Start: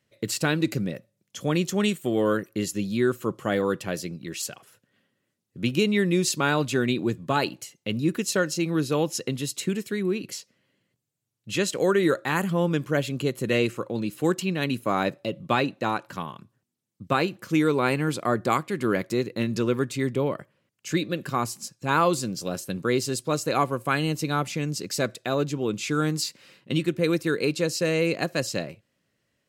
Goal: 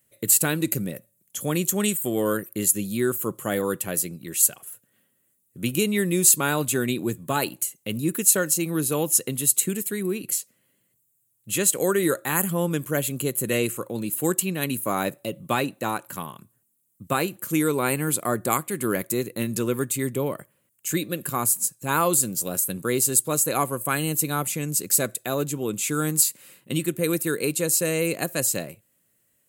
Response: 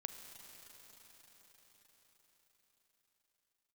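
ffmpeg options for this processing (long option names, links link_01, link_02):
-af "aexciter=amount=11.5:drive=3.2:freq=7500,volume=-1dB"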